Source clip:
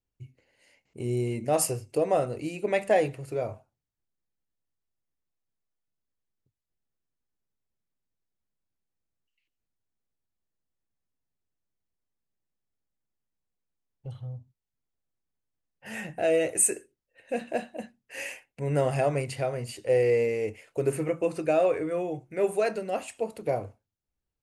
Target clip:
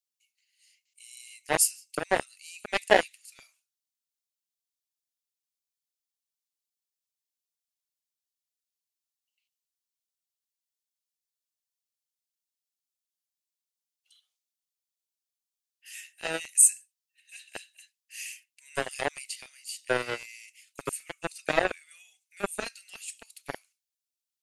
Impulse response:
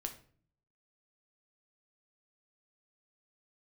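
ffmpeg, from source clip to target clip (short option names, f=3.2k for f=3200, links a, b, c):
-filter_complex "[0:a]lowshelf=f=180:g=-9,acrossover=split=2900[a][b];[a]acrusher=bits=2:mix=0:aa=0.5[c];[c][b]amix=inputs=2:normalize=0,volume=5dB"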